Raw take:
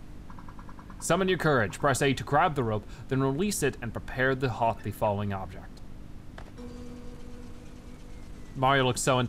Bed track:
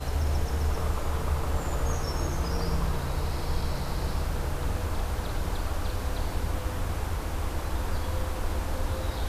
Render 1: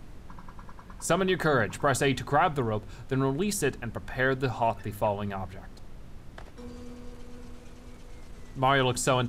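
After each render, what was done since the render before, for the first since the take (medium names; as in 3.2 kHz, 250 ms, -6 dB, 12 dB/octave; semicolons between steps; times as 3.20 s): de-hum 50 Hz, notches 6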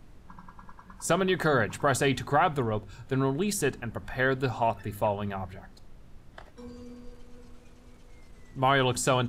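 noise print and reduce 6 dB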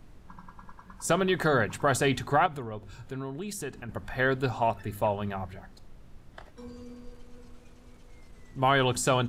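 2.46–3.89 s: compression 2:1, threshold -39 dBFS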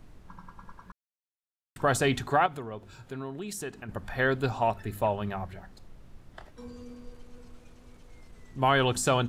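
0.92–1.76 s: mute; 2.28–3.88 s: bass shelf 83 Hz -11 dB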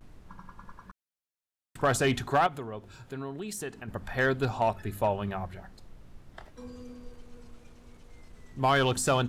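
overload inside the chain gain 16.5 dB; vibrato 0.35 Hz 34 cents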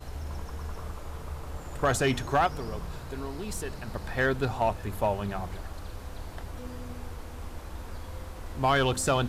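add bed track -10 dB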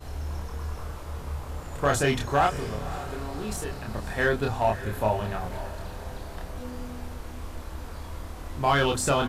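doubling 28 ms -2.5 dB; echo that smears into a reverb 556 ms, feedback 49%, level -14 dB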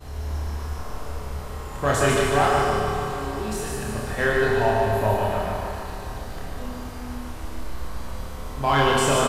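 feedback delay 147 ms, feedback 54%, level -4 dB; Schroeder reverb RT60 1.5 s, combs from 29 ms, DRR 0.5 dB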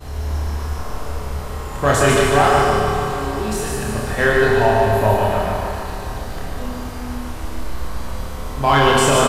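trim +6 dB; peak limiter -3 dBFS, peak gain reduction 2.5 dB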